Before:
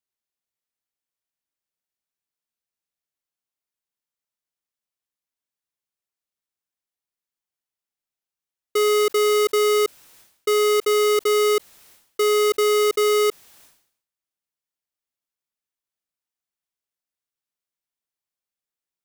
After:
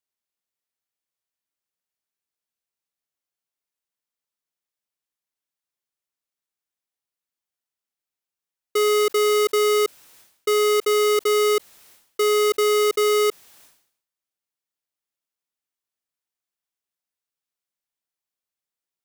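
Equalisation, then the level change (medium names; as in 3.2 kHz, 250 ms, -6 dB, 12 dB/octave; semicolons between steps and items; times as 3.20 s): bass shelf 160 Hz -4 dB; 0.0 dB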